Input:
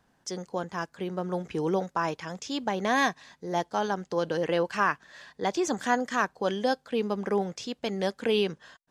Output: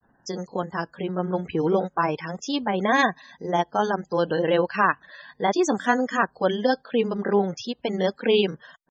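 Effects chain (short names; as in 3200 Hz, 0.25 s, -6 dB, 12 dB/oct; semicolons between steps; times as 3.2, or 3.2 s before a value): loudest bins only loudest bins 64; grains 0.1 s, grains 20/s, spray 16 ms, pitch spread up and down by 0 st; gain +6.5 dB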